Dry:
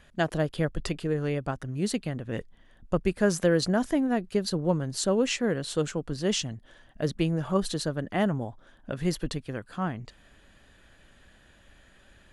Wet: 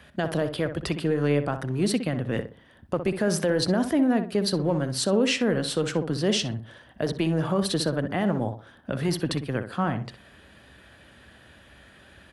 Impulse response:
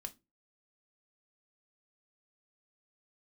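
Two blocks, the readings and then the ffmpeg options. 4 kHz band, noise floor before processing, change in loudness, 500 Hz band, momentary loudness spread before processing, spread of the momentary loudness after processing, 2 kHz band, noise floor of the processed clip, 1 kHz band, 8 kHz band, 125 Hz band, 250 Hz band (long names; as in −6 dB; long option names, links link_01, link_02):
+4.5 dB, −58 dBFS, +2.5 dB, +2.5 dB, 9 LU, 9 LU, +2.5 dB, −54 dBFS, +2.5 dB, +1.5 dB, +2.5 dB, +3.0 dB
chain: -filter_complex "[0:a]highpass=frequency=62:width=0.5412,highpass=frequency=62:width=1.3066,equalizer=frequency=6900:width=3.8:gain=-8.5,acrossover=split=160[link_01][link_02];[link_01]aeval=exprs='0.0119*(abs(mod(val(0)/0.0119+3,4)-2)-1)':channel_layout=same[link_03];[link_02]alimiter=limit=-22dB:level=0:latency=1:release=74[link_04];[link_03][link_04]amix=inputs=2:normalize=0,asplit=2[link_05][link_06];[link_06]adelay=62,lowpass=frequency=1900:poles=1,volume=-8.5dB,asplit=2[link_07][link_08];[link_08]adelay=62,lowpass=frequency=1900:poles=1,volume=0.31,asplit=2[link_09][link_10];[link_10]adelay=62,lowpass=frequency=1900:poles=1,volume=0.31,asplit=2[link_11][link_12];[link_12]adelay=62,lowpass=frequency=1900:poles=1,volume=0.31[link_13];[link_05][link_07][link_09][link_11][link_13]amix=inputs=5:normalize=0,volume=6.5dB"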